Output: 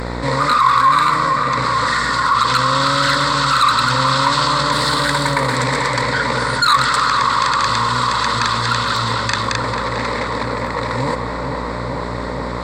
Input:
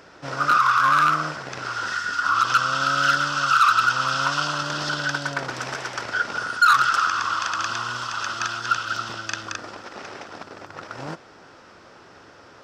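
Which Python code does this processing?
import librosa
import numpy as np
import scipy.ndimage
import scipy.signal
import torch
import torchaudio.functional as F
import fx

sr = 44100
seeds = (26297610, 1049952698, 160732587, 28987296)

y = fx.cvsd(x, sr, bps=64000, at=(4.72, 5.56))
y = fx.ripple_eq(y, sr, per_octave=0.99, db=16)
y = fx.dmg_buzz(y, sr, base_hz=60.0, harmonics=26, level_db=-42.0, tilt_db=-4, odd_only=False)
y = fx.notch_comb(y, sr, f0_hz=420.0, at=(0.82, 1.58))
y = fx.echo_filtered(y, sr, ms=445, feedback_pct=79, hz=2500.0, wet_db=-9.5)
y = fx.env_flatten(y, sr, amount_pct=50)
y = F.gain(torch.from_numpy(y), 1.5).numpy()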